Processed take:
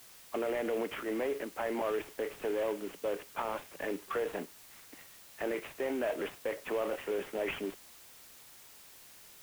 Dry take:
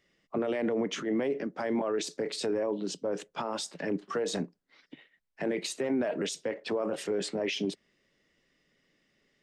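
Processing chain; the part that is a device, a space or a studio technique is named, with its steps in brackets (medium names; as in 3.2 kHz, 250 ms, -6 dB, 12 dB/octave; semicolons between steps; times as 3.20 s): army field radio (band-pass 400–3000 Hz; CVSD coder 16 kbps; white noise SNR 18 dB)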